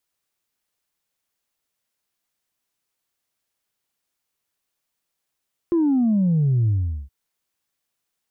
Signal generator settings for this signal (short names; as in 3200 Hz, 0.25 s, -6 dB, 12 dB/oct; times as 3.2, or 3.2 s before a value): sub drop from 350 Hz, over 1.37 s, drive 0 dB, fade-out 0.41 s, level -16 dB